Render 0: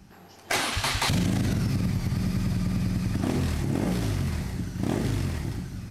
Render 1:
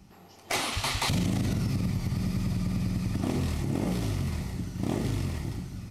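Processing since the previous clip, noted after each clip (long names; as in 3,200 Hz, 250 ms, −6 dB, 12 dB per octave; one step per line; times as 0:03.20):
notch filter 1,600 Hz, Q 5.5
level −2.5 dB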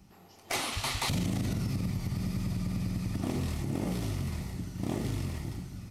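high-shelf EQ 11,000 Hz +4.5 dB
level −3.5 dB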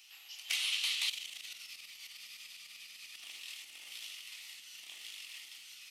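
downward compressor 6 to 1, threshold −42 dBFS, peak gain reduction 14 dB
high-pass with resonance 2,900 Hz, resonance Q 3.4
level +7.5 dB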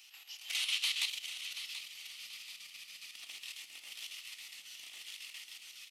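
square-wave tremolo 7.3 Hz, depth 60%, duty 70%
on a send: repeating echo 732 ms, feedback 41%, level −10.5 dB
on the sum: level +1 dB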